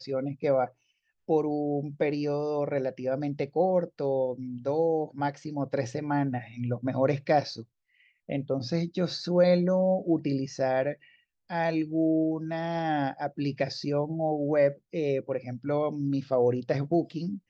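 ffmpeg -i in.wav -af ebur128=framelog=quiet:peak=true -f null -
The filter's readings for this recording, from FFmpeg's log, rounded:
Integrated loudness:
  I:         -28.5 LUFS
  Threshold: -38.8 LUFS
Loudness range:
  LRA:         2.9 LU
  Threshold: -48.8 LUFS
  LRA low:   -30.1 LUFS
  LRA high:  -27.3 LUFS
True peak:
  Peak:      -11.2 dBFS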